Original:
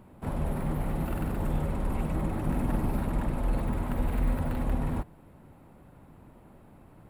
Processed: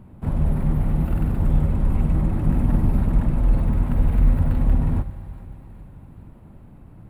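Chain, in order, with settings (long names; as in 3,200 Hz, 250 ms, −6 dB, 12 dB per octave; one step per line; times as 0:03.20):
bass and treble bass +11 dB, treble −3 dB
feedback echo with a high-pass in the loop 415 ms, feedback 66%, high-pass 1,100 Hz, level −16.5 dB
on a send at −13 dB: convolution reverb RT60 3.6 s, pre-delay 21 ms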